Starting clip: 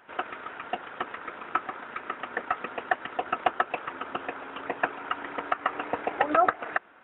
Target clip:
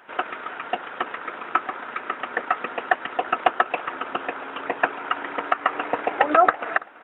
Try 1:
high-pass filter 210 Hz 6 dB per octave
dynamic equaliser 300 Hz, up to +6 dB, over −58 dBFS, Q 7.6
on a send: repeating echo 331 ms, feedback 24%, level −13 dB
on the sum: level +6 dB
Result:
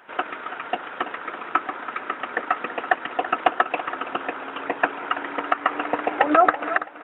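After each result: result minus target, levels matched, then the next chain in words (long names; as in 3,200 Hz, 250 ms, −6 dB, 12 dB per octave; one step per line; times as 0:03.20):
echo-to-direct +8.5 dB; 250 Hz band +3.5 dB
high-pass filter 210 Hz 6 dB per octave
dynamic equaliser 300 Hz, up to +6 dB, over −58 dBFS, Q 7.6
on a send: repeating echo 331 ms, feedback 24%, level −21.5 dB
on the sum: level +6 dB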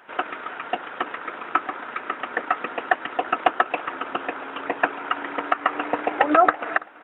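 250 Hz band +3.5 dB
high-pass filter 210 Hz 6 dB per octave
on a send: repeating echo 331 ms, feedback 24%, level −21.5 dB
on the sum: level +6 dB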